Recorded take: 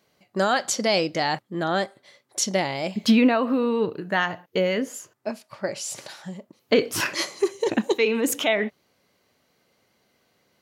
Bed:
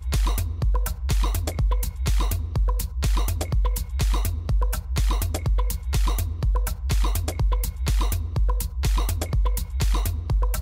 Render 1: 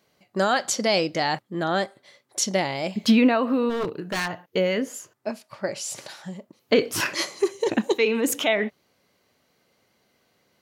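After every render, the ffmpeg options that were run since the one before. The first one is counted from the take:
-filter_complex "[0:a]asplit=3[a][b][c];[a]afade=t=out:st=3.69:d=0.02[d];[b]aeval=exprs='0.0944*(abs(mod(val(0)/0.0944+3,4)-2)-1)':c=same,afade=t=in:st=3.69:d=0.02,afade=t=out:st=4.29:d=0.02[e];[c]afade=t=in:st=4.29:d=0.02[f];[d][e][f]amix=inputs=3:normalize=0"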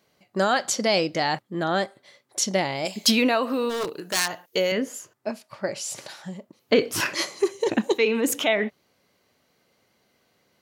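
-filter_complex "[0:a]asettb=1/sr,asplit=3[a][b][c];[a]atrim=end=2.854[d];[b]atrim=start=2.85:end=4.72,asetpts=PTS-STARTPTS,afade=t=in:d=0.004:c=qsin,afade=t=out:st=1.866:d=0.004:c=qsin,bass=f=250:g=-10,treble=f=4k:g=14[e];[c]atrim=start=4.716[f];[d][e]acrossfade=d=0.004:c1=hsin:c2=qsin[g];[g][f]acrossfade=d=0.004:c1=qsin:c2=hsin"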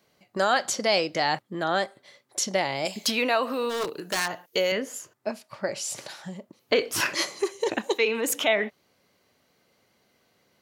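-filter_complex "[0:a]acrossover=split=430|2400[a][b][c];[a]acompressor=threshold=-34dB:ratio=6[d];[c]alimiter=limit=-15.5dB:level=0:latency=1:release=240[e];[d][b][e]amix=inputs=3:normalize=0"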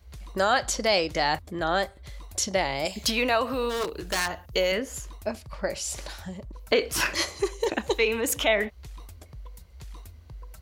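-filter_complex "[1:a]volume=-20.5dB[a];[0:a][a]amix=inputs=2:normalize=0"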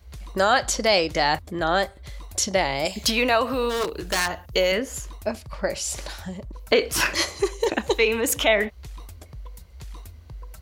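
-af "volume=3.5dB"

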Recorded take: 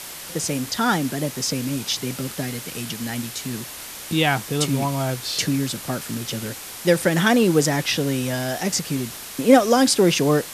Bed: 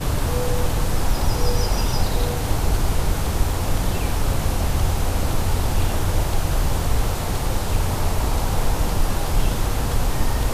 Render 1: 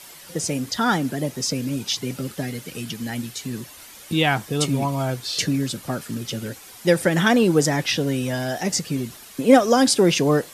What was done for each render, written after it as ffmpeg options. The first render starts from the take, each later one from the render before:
-af "afftdn=nr=10:nf=-36"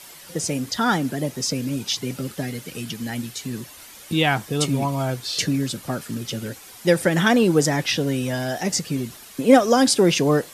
-af anull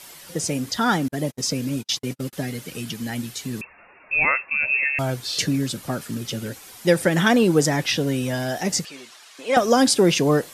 -filter_complex "[0:a]asettb=1/sr,asplit=3[a][b][c];[a]atrim=end=1.084[d];[b]atrim=start=1.08:end=2.33,asetpts=PTS-STARTPTS,afade=t=in:d=0.004:c=qsin,afade=t=out:st=1.246:d=0.004:c=qsin,agate=range=-44dB:threshold=-30dB:ratio=16:release=100:detection=peak[e];[c]atrim=start=2.326[f];[d][e]acrossfade=d=0.004:c1=hsin:c2=qsin[g];[g][f]acrossfade=d=0.004:c1=qsin:c2=hsin,asettb=1/sr,asplit=3[h][i][j];[h]atrim=end=3.614[k];[i]atrim=start=3.61:end=4.99,asetpts=PTS-STARTPTS,afade=t=in:d=0.004:c=qsin,afade=t=out:st=1.376:d=0.004:c=qsin,lowpass=f=2.4k:t=q:w=0.5098,lowpass=f=2.4k:t=q:w=0.6013,lowpass=f=2.4k:t=q:w=0.9,lowpass=f=2.4k:t=q:w=2.563,afreqshift=-2800[l];[j]atrim=start=4.986[m];[k][l]acrossfade=d=0.004:c1=hsin:c2=qsin[n];[n][m]acrossfade=d=0.004:c1=qsin:c2=hsin,asettb=1/sr,asplit=3[o][p][q];[o]atrim=end=8.854[r];[p]atrim=start=8.85:end=9.57,asetpts=PTS-STARTPTS,afade=t=in:d=0.004:c=qsin,afade=t=out:st=0.716:d=0.004:c=qsin,highpass=770,lowpass=6.5k[s];[q]atrim=start=9.566[t];[r][s]acrossfade=d=0.004:c1=hsin:c2=qsin[u];[u][t]acrossfade=d=0.004:c1=qsin:c2=hsin"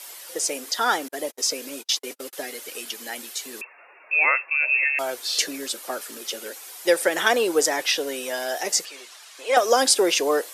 -af "highpass=f=390:w=0.5412,highpass=f=390:w=1.3066,highshelf=f=7.5k:g=5.5"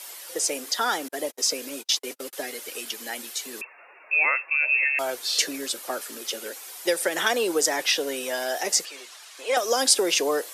-filter_complex "[0:a]acrossover=split=170|3000[a][b][c];[b]acompressor=threshold=-22dB:ratio=3[d];[a][d][c]amix=inputs=3:normalize=0"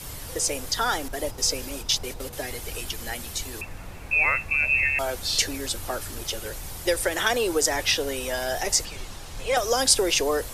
-filter_complex "[1:a]volume=-18.5dB[a];[0:a][a]amix=inputs=2:normalize=0"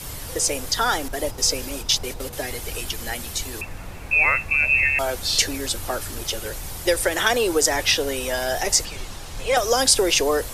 -af "volume=3.5dB,alimiter=limit=-2dB:level=0:latency=1"

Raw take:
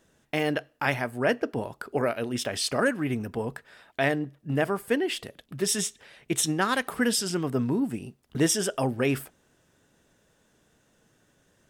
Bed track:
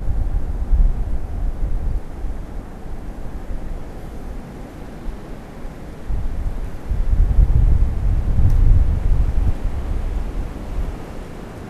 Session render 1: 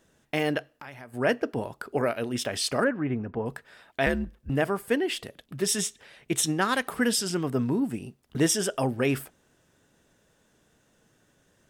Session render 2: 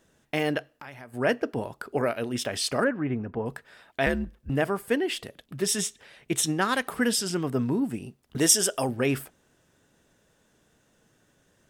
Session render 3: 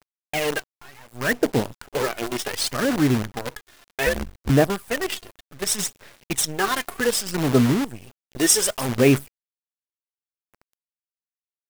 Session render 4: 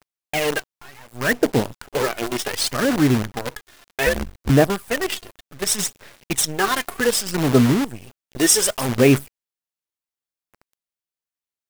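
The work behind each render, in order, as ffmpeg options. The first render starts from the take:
-filter_complex "[0:a]asettb=1/sr,asplit=3[a][b][c];[a]atrim=end=0.734[d];[b]atrim=start=0.73:end=1.14,asetpts=PTS-STARTPTS,afade=t=in:d=0.004:c=qsin,afade=t=out:st=0.406:d=0.004:c=qsin,acompressor=threshold=-45dB:ratio=3:attack=3.2:release=140:knee=1:detection=peak[e];[c]atrim=start=1.136[f];[d][e]acrossfade=d=0.004:c1=hsin:c2=qsin[g];[g][f]acrossfade=d=0.004:c1=qsin:c2=hsin,asettb=1/sr,asplit=3[h][i][j];[h]atrim=end=2.844[k];[i]atrim=start=2.84:end=3.46,asetpts=PTS-STARTPTS,afade=t=in:d=0.004:c=qsin,afade=t=out:st=0.616:d=0.004:c=qsin,lowpass=1.8k[l];[j]atrim=start=3.456[m];[k][l]acrossfade=d=0.004:c1=hsin:c2=qsin[n];[n][m]acrossfade=d=0.004:c1=qsin:c2=hsin,asettb=1/sr,asplit=3[o][p][q];[o]atrim=end=4.064[r];[p]atrim=start=4.06:end=4.5,asetpts=PTS-STARTPTS,afade=t=in:d=0.004:c=qsin,afade=t=out:st=0.436:d=0.004:c=qsin,afreqshift=-88[s];[q]atrim=start=4.496[t];[r][s]acrossfade=d=0.004:c1=hsin:c2=qsin[u];[u][t]acrossfade=d=0.004:c1=qsin:c2=hsin"
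-filter_complex "[0:a]asettb=1/sr,asplit=3[a][b][c];[a]atrim=end=8.384[d];[b]atrim=start=8.38:end=8.89,asetpts=PTS-STARTPTS,afade=t=in:d=0.004:c=qsin,afade=t=out:st=0.506:d=0.004:c=qsin,bass=f=250:g=-5,treble=f=4k:g=8[e];[c]atrim=start=8.886[f];[d][e]acrossfade=d=0.004:c1=hsin:c2=qsin[g];[g][f]acrossfade=d=0.004:c1=qsin:c2=hsin"
-af "aphaser=in_gain=1:out_gain=1:delay=2.9:decay=0.69:speed=0.66:type=sinusoidal,acrusher=bits=5:dc=4:mix=0:aa=0.000001"
-af "volume=2.5dB,alimiter=limit=-3dB:level=0:latency=1"

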